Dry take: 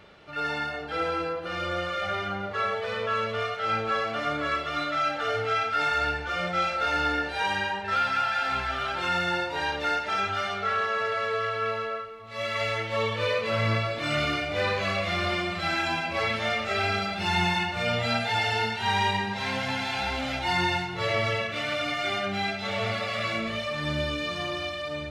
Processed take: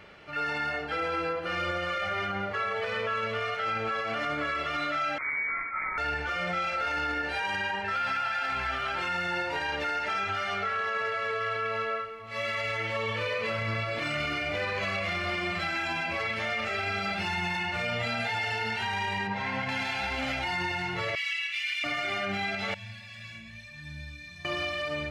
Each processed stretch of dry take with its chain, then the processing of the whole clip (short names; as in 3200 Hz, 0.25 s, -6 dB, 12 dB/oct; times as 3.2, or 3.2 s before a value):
5.18–5.98 median filter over 41 samples + HPF 400 Hz 24 dB/oct + inverted band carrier 2700 Hz
19.27–19.69 LPF 1700 Hz 6 dB/oct + comb 6.5 ms, depth 36%
21.15–21.84 Chebyshev high-pass 2300 Hz, order 3 + comb 4.6 ms, depth 46% + Doppler distortion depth 0.14 ms
22.74–24.45 Butterworth band-stop 1300 Hz, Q 6 + passive tone stack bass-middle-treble 6-0-2 + comb 1.2 ms, depth 87%
whole clip: bell 2100 Hz +5 dB 1 oct; notch 3700 Hz, Q 8.8; limiter -22.5 dBFS